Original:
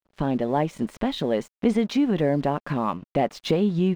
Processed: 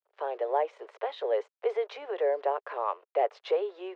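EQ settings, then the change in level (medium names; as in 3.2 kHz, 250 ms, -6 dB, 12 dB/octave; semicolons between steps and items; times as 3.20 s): steep high-pass 410 Hz 72 dB/octave; low-pass 1.4 kHz 6 dB/octave; distance through air 98 m; -1.0 dB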